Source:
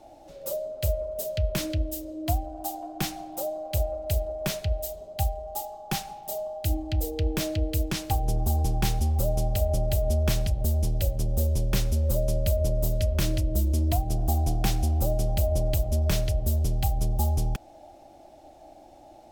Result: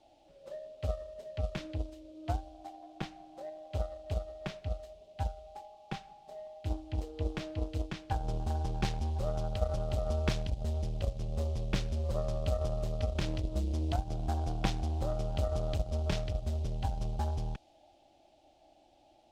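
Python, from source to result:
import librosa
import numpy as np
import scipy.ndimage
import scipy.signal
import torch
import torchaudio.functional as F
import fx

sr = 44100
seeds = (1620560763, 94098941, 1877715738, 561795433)

y = fx.dmg_noise_band(x, sr, seeds[0], low_hz=2800.0, high_hz=13000.0, level_db=-50.0)
y = fx.cheby_harmonics(y, sr, harmonics=(3, 5, 7), levels_db=(-12, -34, -34), full_scale_db=-11.0)
y = fx.env_lowpass(y, sr, base_hz=2600.0, full_db=-16.0)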